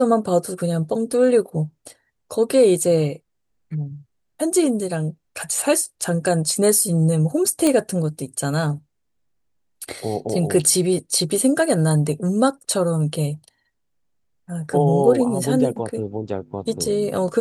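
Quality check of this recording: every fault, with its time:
7.67 s: pop -6 dBFS

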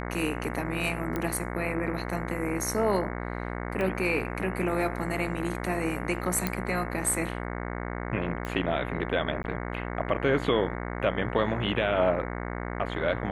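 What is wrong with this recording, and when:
buzz 60 Hz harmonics 37 -34 dBFS
1.16 s: pop -17 dBFS
3.81 s: pop -19 dBFS
6.47 s: pop -12 dBFS
8.45 s: pop -20 dBFS
9.43–9.44 s: dropout 11 ms

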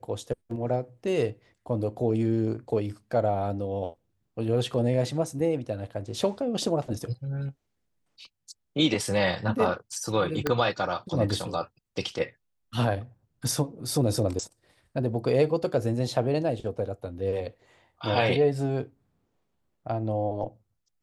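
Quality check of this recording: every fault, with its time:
10.47 s: pop -11 dBFS

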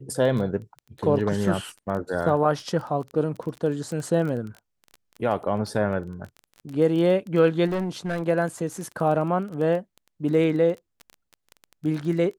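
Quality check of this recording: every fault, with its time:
crackle 16 per s -30 dBFS
7.67–8.23 s: clipped -23 dBFS

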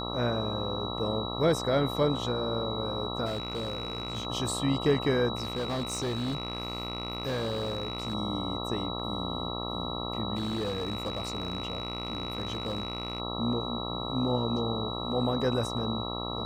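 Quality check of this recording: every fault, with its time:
buzz 60 Hz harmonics 22 -36 dBFS
whine 3.9 kHz -37 dBFS
3.25–4.27 s: clipped -28.5 dBFS
5.35–8.15 s: clipped -27.5 dBFS
10.35–13.20 s: clipped -27.5 dBFS

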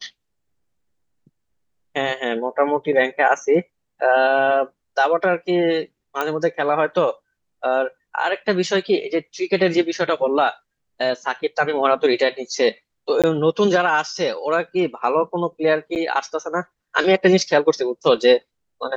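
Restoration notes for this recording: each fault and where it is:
6.21 s: pop -9 dBFS
13.22–13.24 s: dropout 17 ms
15.95–15.96 s: dropout 8.5 ms

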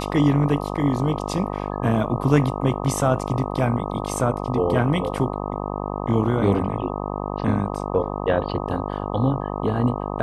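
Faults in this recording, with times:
buzz 50 Hz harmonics 25 -28 dBFS

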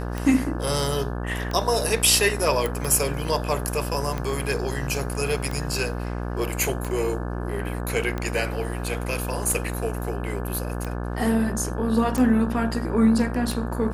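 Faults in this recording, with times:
buzz 60 Hz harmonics 29 -29 dBFS
tick 45 rpm
2.66 s: pop

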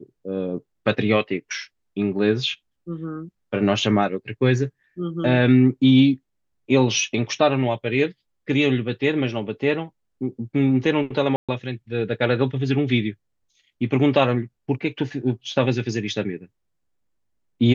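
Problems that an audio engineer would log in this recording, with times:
11.36–11.49 s: dropout 126 ms

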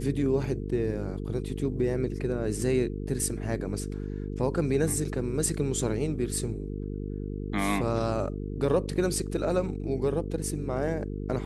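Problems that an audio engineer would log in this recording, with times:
buzz 50 Hz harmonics 9 -34 dBFS

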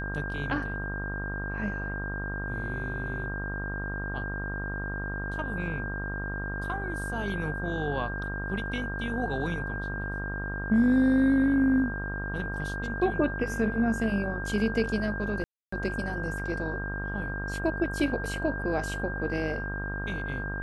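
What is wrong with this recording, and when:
buzz 50 Hz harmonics 32 -35 dBFS
whine 1.6 kHz -35 dBFS
15.44–15.72 s: dropout 284 ms

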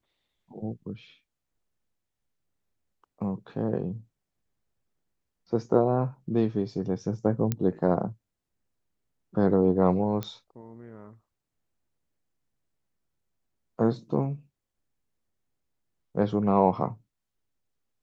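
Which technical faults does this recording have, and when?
7.52 s: pop -13 dBFS
10.23 s: pop -17 dBFS

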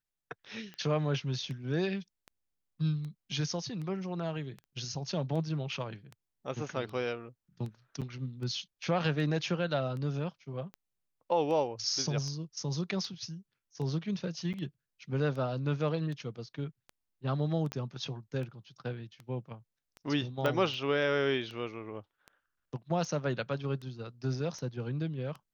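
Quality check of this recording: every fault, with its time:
tick 78 rpm -31 dBFS
4.64 s: pop -44 dBFS
8.01–8.02 s: dropout 7.2 ms
14.53–14.54 s: dropout 8.1 ms
17.72 s: pop -22 dBFS
20.46 s: pop -18 dBFS

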